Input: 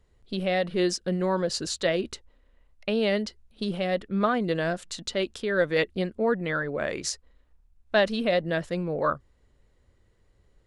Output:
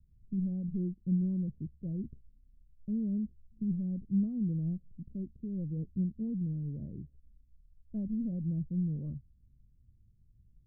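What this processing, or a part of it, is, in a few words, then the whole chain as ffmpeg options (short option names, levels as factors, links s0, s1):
the neighbour's flat through the wall: -filter_complex "[0:a]asettb=1/sr,asplit=3[s0][s1][s2];[s0]atrim=end=6.654[s3];[s1]atrim=start=6.65:end=8.42,asetpts=PTS-STARTPTS,afade=t=in:d=0.004:c=qsin,afade=t=out:st=1.766:d=0.004:c=qsin,equalizer=f=2300:t=o:w=1.3:g=14[s4];[s2]atrim=start=8.416[s5];[s3][s4]acrossfade=d=0.004:c1=hsin:c2=qsin[s6];[s6][s5]acrossfade=d=0.004:c1=qsin:c2=hsin,lowpass=f=210:w=0.5412,lowpass=f=210:w=1.3066,equalizer=f=130:t=o:w=0.77:g=4"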